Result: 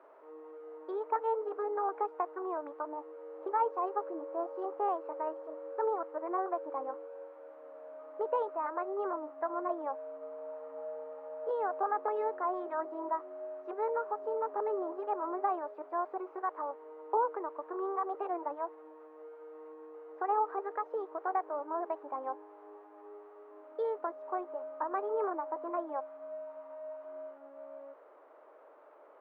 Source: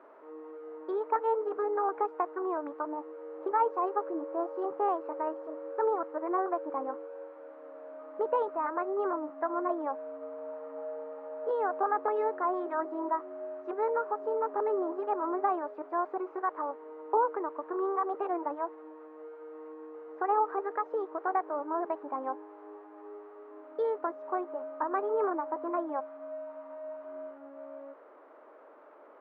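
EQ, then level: tone controls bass -14 dB, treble -5 dB; bass shelf 200 Hz -12 dB; peaking EQ 1.6 kHz -5.5 dB 1.8 oct; +1.0 dB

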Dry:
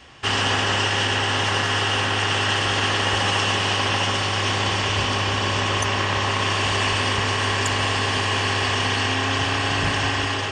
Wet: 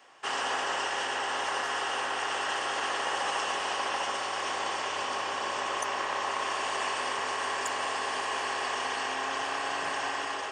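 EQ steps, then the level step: high-pass 650 Hz 12 dB/octave; peaking EQ 3.4 kHz -12 dB 2.4 oct; -1.5 dB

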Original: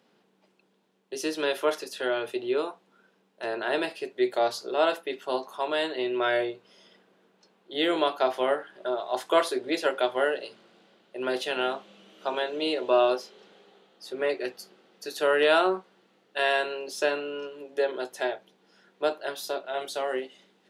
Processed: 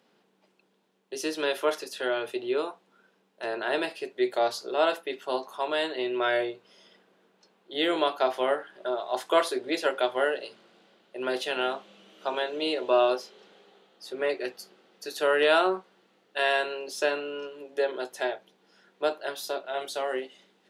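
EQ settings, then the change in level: bass shelf 250 Hz -3.5 dB; 0.0 dB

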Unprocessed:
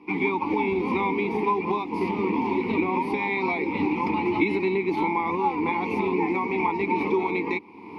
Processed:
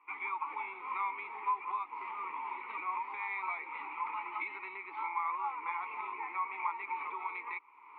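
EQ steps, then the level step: ladder band-pass 1.4 kHz, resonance 70%; distance through air 500 m; tilt EQ +2.5 dB/octave; +5.5 dB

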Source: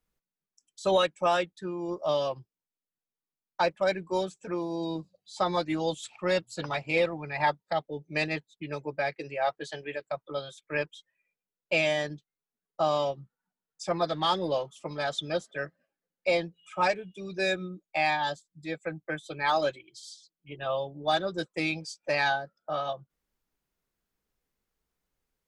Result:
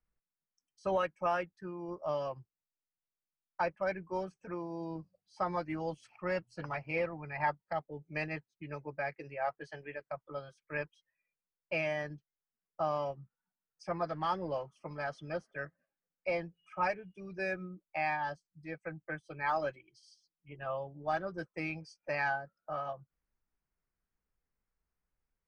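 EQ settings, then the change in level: boxcar filter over 12 samples; peaking EQ 380 Hz -8.5 dB 2.9 oct; 0.0 dB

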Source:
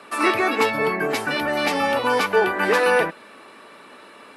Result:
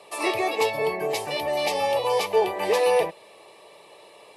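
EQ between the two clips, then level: high-pass 71 Hz; static phaser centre 600 Hz, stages 4; 0.0 dB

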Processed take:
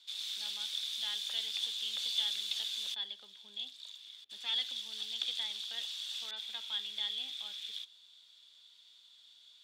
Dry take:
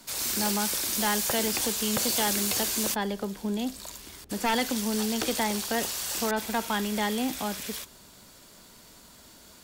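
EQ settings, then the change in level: band-pass filter 3.5 kHz, Q 13; +7.5 dB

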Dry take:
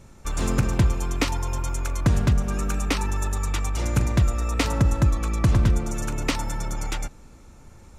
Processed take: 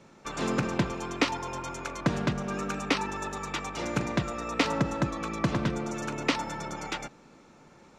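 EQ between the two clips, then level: three-band isolator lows -24 dB, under 230 Hz, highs -19 dB, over 5.9 kHz; peaking EQ 150 Hz +9 dB 0.86 oct; 0.0 dB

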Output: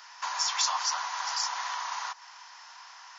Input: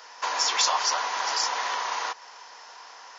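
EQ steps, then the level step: dynamic bell 2.5 kHz, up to -5 dB, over -39 dBFS, Q 0.78; high-pass 870 Hz 24 dB/octave; -2.0 dB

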